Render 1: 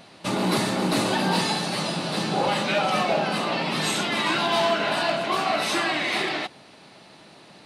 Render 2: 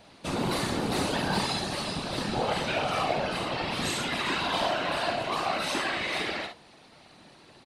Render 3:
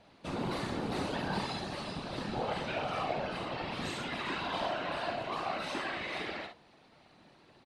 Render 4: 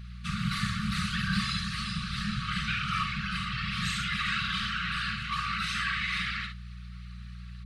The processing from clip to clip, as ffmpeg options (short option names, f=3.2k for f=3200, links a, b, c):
-filter_complex "[0:a]asplit=2[a][b];[b]aecho=0:1:51|70:0.473|0.211[c];[a][c]amix=inputs=2:normalize=0,afftfilt=real='hypot(re,im)*cos(2*PI*random(0))':imag='hypot(re,im)*sin(2*PI*random(1))':win_size=512:overlap=0.75"
-af "aemphasis=mode=reproduction:type=50kf,volume=-6dB"
-af "aeval=exprs='val(0)+0.00355*(sin(2*PI*60*n/s)+sin(2*PI*2*60*n/s)/2+sin(2*PI*3*60*n/s)/3+sin(2*PI*4*60*n/s)/4+sin(2*PI*5*60*n/s)/5)':c=same,afftfilt=real='re*(1-between(b*sr/4096,220,1100))':imag='im*(1-between(b*sr/4096,220,1100))':win_size=4096:overlap=0.75,volume=8.5dB"